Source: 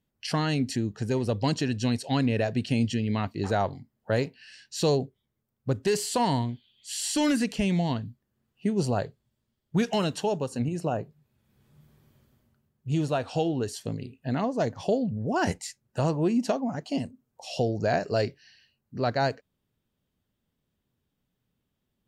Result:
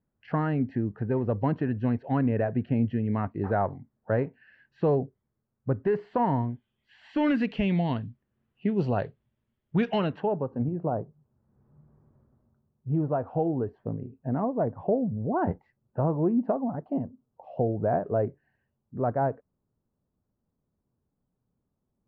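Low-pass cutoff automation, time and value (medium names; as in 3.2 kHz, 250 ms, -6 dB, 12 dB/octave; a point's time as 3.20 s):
low-pass 24 dB/octave
6.98 s 1.7 kHz
7.40 s 3 kHz
9.96 s 3 kHz
10.49 s 1.2 kHz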